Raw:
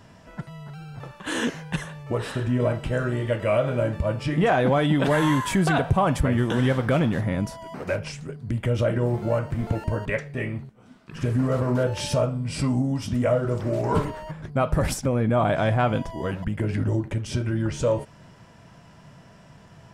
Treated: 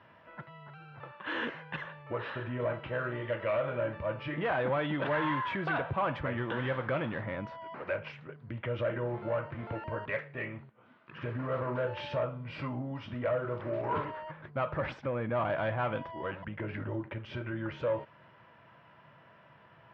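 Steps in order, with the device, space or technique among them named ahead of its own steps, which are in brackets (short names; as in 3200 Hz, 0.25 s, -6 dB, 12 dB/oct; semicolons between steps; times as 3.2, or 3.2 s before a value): overdrive pedal into a guitar cabinet (overdrive pedal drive 15 dB, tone 1300 Hz, clips at -9.5 dBFS; speaker cabinet 98–3400 Hz, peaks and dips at 180 Hz -8 dB, 260 Hz -7 dB, 420 Hz -6 dB, 730 Hz -7 dB); gain -8 dB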